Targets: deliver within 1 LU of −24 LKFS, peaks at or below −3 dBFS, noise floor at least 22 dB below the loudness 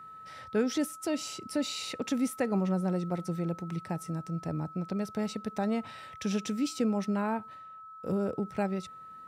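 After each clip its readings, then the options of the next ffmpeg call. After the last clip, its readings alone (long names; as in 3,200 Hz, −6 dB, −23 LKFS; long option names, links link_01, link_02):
interfering tone 1,300 Hz; level of the tone −45 dBFS; integrated loudness −32.5 LKFS; sample peak −17.5 dBFS; target loudness −24.0 LKFS
→ -af "bandreject=frequency=1300:width=30"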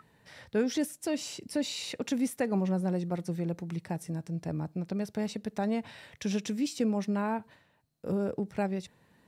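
interfering tone none found; integrated loudness −33.0 LKFS; sample peak −17.5 dBFS; target loudness −24.0 LKFS
→ -af "volume=9dB"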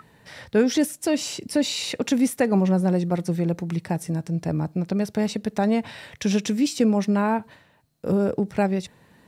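integrated loudness −24.0 LKFS; sample peak −8.5 dBFS; background noise floor −58 dBFS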